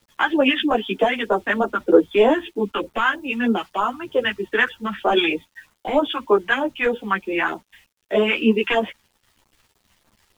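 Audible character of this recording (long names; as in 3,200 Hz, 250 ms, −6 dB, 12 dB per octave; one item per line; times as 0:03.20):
phaser sweep stages 2, 3.2 Hz, lowest notch 460–2,100 Hz
a quantiser's noise floor 10 bits, dither none
a shimmering, thickened sound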